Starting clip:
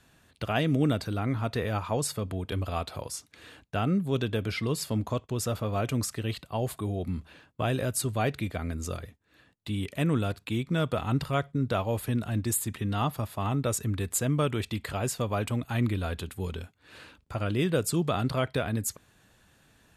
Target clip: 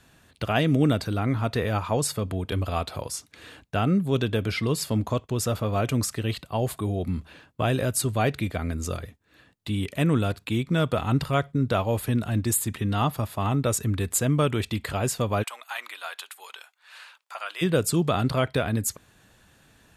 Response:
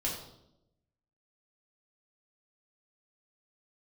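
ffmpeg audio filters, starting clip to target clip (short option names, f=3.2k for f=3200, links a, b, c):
-filter_complex "[0:a]asplit=3[a][b][c];[a]afade=t=out:st=15.42:d=0.02[d];[b]highpass=f=820:w=0.5412,highpass=f=820:w=1.3066,afade=t=in:st=15.42:d=0.02,afade=t=out:st=17.61:d=0.02[e];[c]afade=t=in:st=17.61:d=0.02[f];[d][e][f]amix=inputs=3:normalize=0,volume=4dB"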